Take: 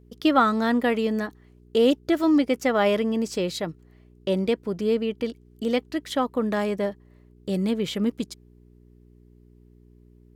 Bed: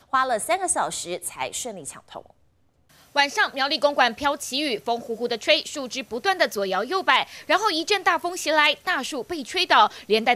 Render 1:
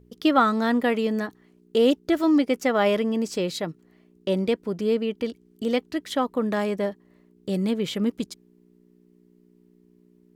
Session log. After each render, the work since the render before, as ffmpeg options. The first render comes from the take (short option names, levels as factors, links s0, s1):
-af "bandreject=f=60:t=h:w=4,bandreject=f=120:t=h:w=4"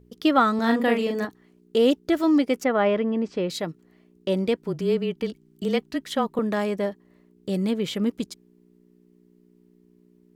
-filter_complex "[0:a]asettb=1/sr,asplit=3[s0][s1][s2];[s0]atrim=end=0.554[s3];[s1]atrim=start=0.55:end=1.25,asetpts=PTS-STARTPTS,afade=t=in:d=0.004:c=qsin,afade=t=out:st=0.696:d=0.004:c=qsin,asplit=2[s4][s5];[s5]adelay=39,volume=0.631[s6];[s4][s6]amix=inputs=2:normalize=0,atrim=end_sample=30870[s7];[s2]atrim=start=1.246[s8];[s3][s7]acrossfade=d=0.004:c1=hsin:c2=qsin[s9];[s9][s8]acrossfade=d=0.004:c1=qsin:c2=hsin,asettb=1/sr,asplit=3[s10][s11][s12];[s10]atrim=end=2.644[s13];[s11]atrim=start=2.64:end=3.5,asetpts=PTS-STARTPTS,afade=t=in:d=0.004:c=qsin,afade=t=out:st=0.856:d=0.004:c=qsin,lowpass=2400[s14];[s12]atrim=start=3.496[s15];[s13][s14]acrossfade=d=0.004:c1=hsin:c2=qsin[s16];[s16][s15]acrossfade=d=0.004:c1=qsin:c2=hsin,asettb=1/sr,asplit=3[s17][s18][s19];[s17]atrim=end=4.574[s20];[s18]atrim=start=4.57:end=6.39,asetpts=PTS-STARTPTS,afade=t=in:d=0.004:c=qsin,afade=t=out:st=1.816:d=0.004:c=qsin,afreqshift=-24[s21];[s19]atrim=start=6.386[s22];[s20][s21]acrossfade=d=0.004:c1=hsin:c2=qsin[s23];[s23][s22]acrossfade=d=0.004:c1=qsin:c2=hsin"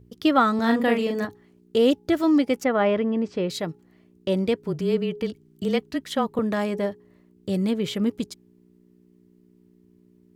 -af "equalizer=f=100:t=o:w=0.6:g=12,bandreject=f=417.6:t=h:w=4,bandreject=f=835.2:t=h:w=4"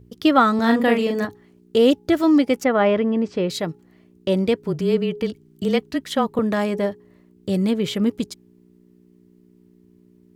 -af "volume=1.5"